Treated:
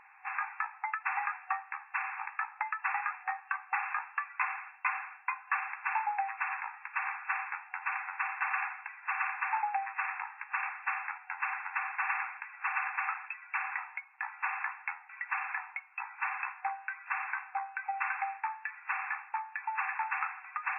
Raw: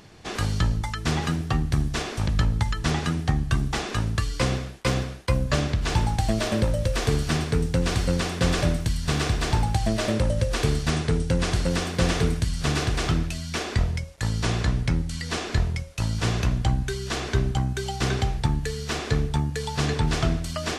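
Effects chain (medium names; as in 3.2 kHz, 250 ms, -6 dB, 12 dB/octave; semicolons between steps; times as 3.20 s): FFT band-pass 750–2700 Hz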